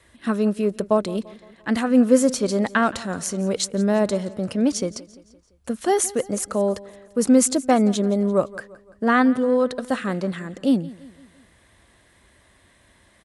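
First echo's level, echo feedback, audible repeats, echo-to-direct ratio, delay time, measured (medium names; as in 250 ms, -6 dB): -20.0 dB, 51%, 3, -18.5 dB, 171 ms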